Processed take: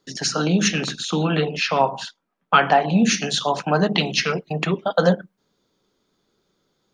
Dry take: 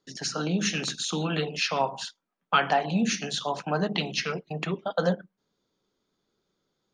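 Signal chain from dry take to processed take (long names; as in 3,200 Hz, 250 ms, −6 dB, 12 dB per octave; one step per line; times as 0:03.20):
0:00.68–0:03.02: high-shelf EQ 4,500 Hz −11.5 dB
level +8 dB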